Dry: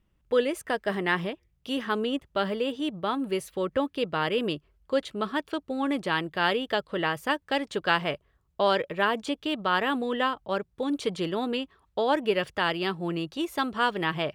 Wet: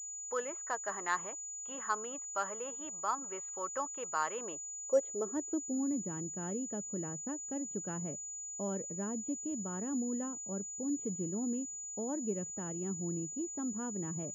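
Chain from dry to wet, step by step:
band-pass filter sweep 1,100 Hz → 210 Hz, 0:04.33–0:05.88
switching amplifier with a slow clock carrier 6,900 Hz
level −1.5 dB

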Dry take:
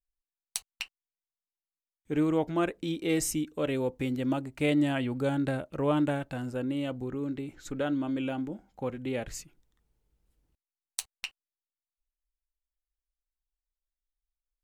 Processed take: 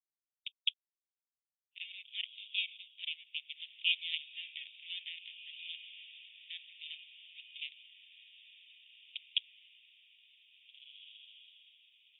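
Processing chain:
adaptive Wiener filter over 25 samples
Butterworth high-pass 2,000 Hz 72 dB per octave
high-shelf EQ 2,600 Hz +8.5 dB
speed change +20%
linear-phase brick-wall low-pass 3,700 Hz
feedback delay with all-pass diffusion 1,792 ms, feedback 53%, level −13.5 dB
level +3.5 dB
Opus 64 kbit/s 48,000 Hz

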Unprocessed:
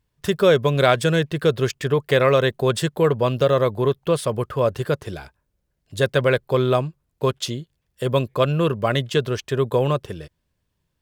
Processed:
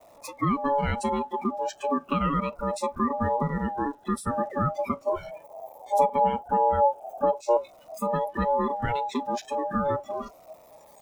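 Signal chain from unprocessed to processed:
converter with a step at zero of −19 dBFS
Butterworth band-reject 3,700 Hz, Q 3.8
tilt shelving filter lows +5 dB, about 650 Hz
downward compressor 4 to 1, threshold −17 dBFS, peak gain reduction 8 dB
downward expander −20 dBFS
noise reduction from a noise print of the clip's start 22 dB
0:05.03–0:07.57: octave-band graphic EQ 125/250/500/1,000/4,000 Hz +8/+6/−4/−8/−8 dB
ring modulation 710 Hz
phaser whose notches keep moving one way falling 0.38 Hz

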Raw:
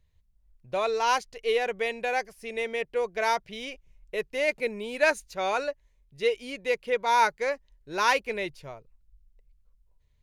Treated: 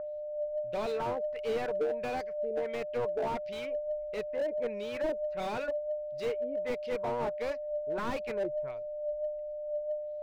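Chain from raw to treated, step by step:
steady tone 600 Hz −30 dBFS
auto-filter low-pass sine 1.5 Hz 460–5,200 Hz
slew-rate limiting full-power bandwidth 44 Hz
level −6 dB

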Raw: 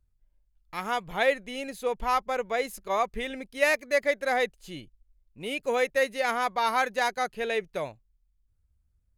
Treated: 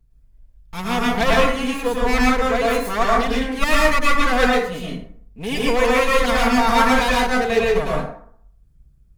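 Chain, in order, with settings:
lower of the sound and its delayed copy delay 4.4 ms
low-shelf EQ 230 Hz +9 dB
dense smooth reverb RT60 0.6 s, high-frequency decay 0.55×, pre-delay 95 ms, DRR −4.5 dB
level +5 dB

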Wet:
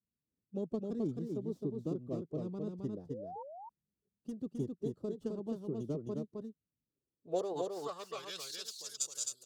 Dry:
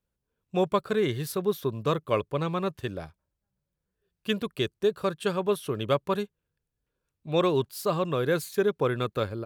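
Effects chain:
stylus tracing distortion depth 0.2 ms
high-shelf EQ 12,000 Hz +10.5 dB
harmonic and percussive parts rebalanced harmonic −8 dB
drawn EQ curve 110 Hz 0 dB, 240 Hz −8 dB, 390 Hz −4 dB, 2,100 Hz −18 dB, 5,000 Hz +4 dB, 7,300 Hz +7 dB, 11,000 Hz +2 dB
downward compressor 2.5 to 1, threshold −30 dBFS, peak gain reduction 6 dB
band-pass filter sweep 230 Hz → 6,900 Hz, 0:06.89–0:08.84
phase-vocoder pitch shift with formants kept +1.5 semitones
sound drawn into the spectrogram rise, 0:03.09–0:03.43, 430–970 Hz −52 dBFS
on a send: single-tap delay 263 ms −3.5 dB
on the sum: level +7 dB

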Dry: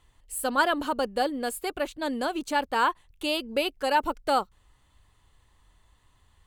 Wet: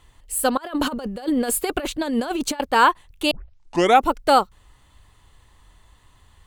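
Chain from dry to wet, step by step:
0:00.57–0:02.60: compressor whose output falls as the input rises −32 dBFS, ratio −0.5
0:03.31: tape start 0.76 s
level +8.5 dB

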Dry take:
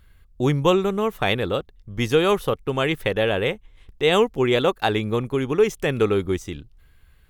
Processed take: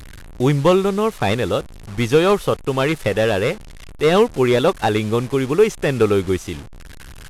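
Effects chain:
linear delta modulator 64 kbit/s, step −35 dBFS
level +4 dB

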